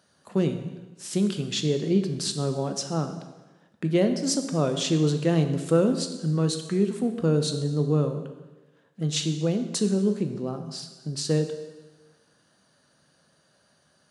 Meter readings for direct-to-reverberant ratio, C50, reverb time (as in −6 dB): 6.5 dB, 9.0 dB, 1.2 s